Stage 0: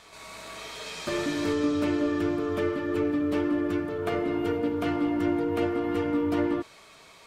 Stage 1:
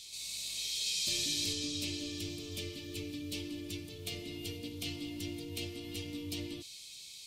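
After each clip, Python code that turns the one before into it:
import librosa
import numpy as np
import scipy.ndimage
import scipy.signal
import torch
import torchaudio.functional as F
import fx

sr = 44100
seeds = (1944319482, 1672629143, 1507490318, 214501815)

y = fx.curve_eq(x, sr, hz=(110.0, 1500.0, 2400.0, 4000.0), db=(0, -25, 3, 15))
y = F.gain(torch.from_numpy(y), -6.5).numpy()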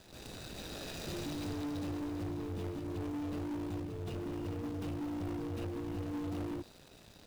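y = scipy.signal.medfilt(x, 41)
y = fx.leveller(y, sr, passes=3)
y = F.gain(torch.from_numpy(y), -1.5).numpy()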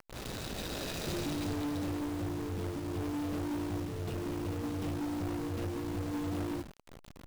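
y = fx.delta_hold(x, sr, step_db=-46.0)
y = fx.rider(y, sr, range_db=4, speed_s=2.0)
y = F.gain(torch.from_numpy(y), 4.0).numpy()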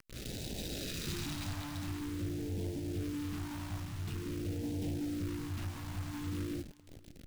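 y = fx.phaser_stages(x, sr, stages=2, low_hz=400.0, high_hz=1200.0, hz=0.47, feedback_pct=5)
y = y + 10.0 ** (-23.5 / 20.0) * np.pad(y, (int(563 * sr / 1000.0), 0))[:len(y)]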